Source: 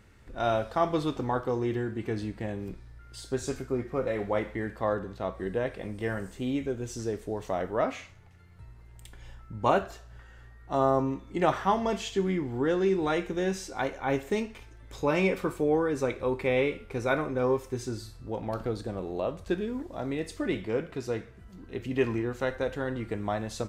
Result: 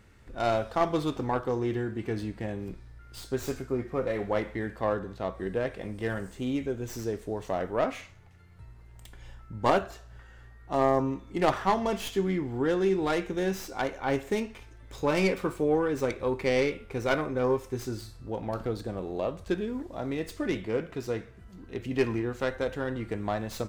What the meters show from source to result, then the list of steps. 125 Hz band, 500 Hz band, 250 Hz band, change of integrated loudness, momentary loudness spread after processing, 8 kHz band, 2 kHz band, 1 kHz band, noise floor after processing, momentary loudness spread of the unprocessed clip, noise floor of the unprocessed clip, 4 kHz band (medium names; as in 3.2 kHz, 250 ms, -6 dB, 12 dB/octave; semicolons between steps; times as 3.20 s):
0.0 dB, 0.0 dB, 0.0 dB, 0.0 dB, 11 LU, -0.5 dB, 0.0 dB, 0.0 dB, -51 dBFS, 10 LU, -51 dBFS, +1.0 dB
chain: tracing distortion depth 0.12 ms